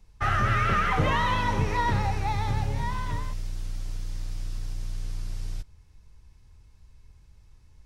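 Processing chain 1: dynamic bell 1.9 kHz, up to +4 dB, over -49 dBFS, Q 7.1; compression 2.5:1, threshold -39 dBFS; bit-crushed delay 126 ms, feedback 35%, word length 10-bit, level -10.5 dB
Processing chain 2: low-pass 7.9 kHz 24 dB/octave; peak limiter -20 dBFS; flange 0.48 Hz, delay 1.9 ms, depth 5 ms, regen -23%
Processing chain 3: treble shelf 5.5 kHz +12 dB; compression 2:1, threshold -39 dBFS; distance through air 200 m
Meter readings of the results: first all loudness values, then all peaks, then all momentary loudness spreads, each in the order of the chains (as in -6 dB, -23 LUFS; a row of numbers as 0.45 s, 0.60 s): -39.0 LUFS, -35.5 LUFS, -38.5 LUFS; -24.5 dBFS, -21.0 dBFS, -23.0 dBFS; 22 LU, 9 LU, 23 LU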